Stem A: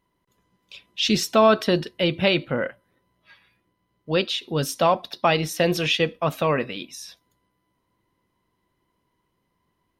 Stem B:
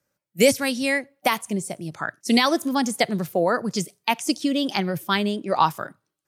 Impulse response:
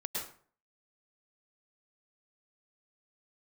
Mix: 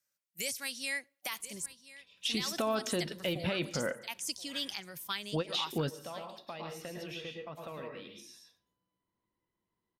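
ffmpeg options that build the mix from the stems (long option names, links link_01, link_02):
-filter_complex "[0:a]acompressor=threshold=-27dB:ratio=3,adelay=1250,volume=2dB,asplit=2[link_01][link_02];[link_02]volume=-21dB[link_03];[1:a]tiltshelf=frequency=1300:gain=-10,volume=-12.5dB,asplit=3[link_04][link_05][link_06];[link_04]atrim=end=1.66,asetpts=PTS-STARTPTS,afade=type=out:start_time=1.656:duration=0.004:curve=hsin[link_07];[link_05]atrim=start=1.66:end=2.17,asetpts=PTS-STARTPTS,volume=0[link_08];[link_06]atrim=start=2.17,asetpts=PTS-STARTPTS,afade=type=in:duration=0.004:curve=hsin[link_09];[link_07][link_08][link_09]concat=n=3:v=0:a=1,asplit=3[link_10][link_11][link_12];[link_11]volume=-20.5dB[link_13];[link_12]apad=whole_len=495713[link_14];[link_01][link_14]sidechaingate=range=-25dB:threshold=-46dB:ratio=16:detection=peak[link_15];[2:a]atrim=start_sample=2205[link_16];[link_03][link_16]afir=irnorm=-1:irlink=0[link_17];[link_13]aecho=0:1:1027:1[link_18];[link_15][link_10][link_17][link_18]amix=inputs=4:normalize=0,alimiter=limit=-22.5dB:level=0:latency=1:release=312"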